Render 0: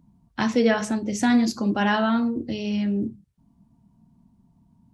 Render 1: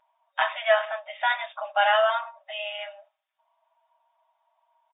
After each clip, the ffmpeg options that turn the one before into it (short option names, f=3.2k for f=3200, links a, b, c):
-filter_complex "[0:a]aecho=1:1:6.3:0.99,asplit=2[a][b];[b]acompressor=threshold=-29dB:ratio=6,volume=-1dB[c];[a][c]amix=inputs=2:normalize=0,afftfilt=real='re*between(b*sr/4096,560,3700)':imag='im*between(b*sr/4096,560,3700)':win_size=4096:overlap=0.75,volume=-1dB"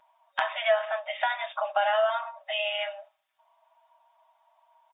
-filter_complex "[0:a]acrossover=split=490[a][b];[b]acompressor=threshold=-31dB:ratio=10[c];[a][c]amix=inputs=2:normalize=0,volume=5.5dB"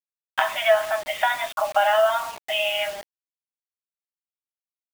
-af "acrusher=bits=6:mix=0:aa=0.000001,volume=5.5dB"